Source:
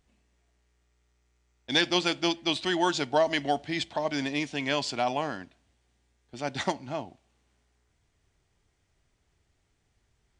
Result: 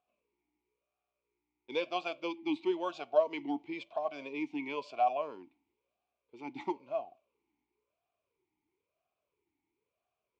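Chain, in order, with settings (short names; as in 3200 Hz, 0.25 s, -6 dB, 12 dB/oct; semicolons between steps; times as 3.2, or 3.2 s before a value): vowel sweep a-u 0.99 Hz; gain +2.5 dB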